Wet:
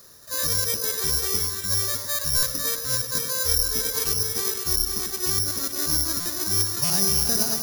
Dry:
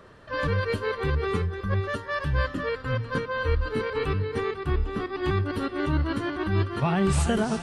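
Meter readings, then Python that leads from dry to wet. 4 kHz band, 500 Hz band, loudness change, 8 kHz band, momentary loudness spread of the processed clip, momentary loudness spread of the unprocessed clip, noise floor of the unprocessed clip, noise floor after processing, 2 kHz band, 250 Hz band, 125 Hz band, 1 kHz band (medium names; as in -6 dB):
+14.0 dB, -7.0 dB, +6.0 dB, no reading, 5 LU, 5 LU, -41 dBFS, -34 dBFS, -4.5 dB, -8.0 dB, -8.0 dB, -6.5 dB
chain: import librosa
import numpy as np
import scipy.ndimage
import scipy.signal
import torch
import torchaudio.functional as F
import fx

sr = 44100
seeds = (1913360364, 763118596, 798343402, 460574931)

p1 = fx.high_shelf(x, sr, hz=2600.0, db=9.5)
p2 = p1 + fx.echo_split(p1, sr, split_hz=990.0, low_ms=100, high_ms=554, feedback_pct=52, wet_db=-6.5, dry=0)
p3 = (np.kron(scipy.signal.resample_poly(p2, 1, 8), np.eye(8)[0]) * 8)[:len(p2)]
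p4 = fx.buffer_glitch(p3, sr, at_s=(2.37, 6.2, 6.84), block=256, repeats=9)
y = p4 * 10.0 ** (-8.5 / 20.0)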